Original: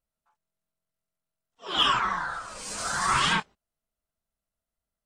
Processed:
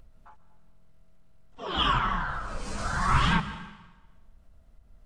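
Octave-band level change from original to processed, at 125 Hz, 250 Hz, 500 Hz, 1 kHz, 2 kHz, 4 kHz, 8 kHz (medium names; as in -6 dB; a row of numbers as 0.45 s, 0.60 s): +10.0 dB, +5.5 dB, +0.5 dB, -1.0 dB, -2.0 dB, -5.0 dB, -10.5 dB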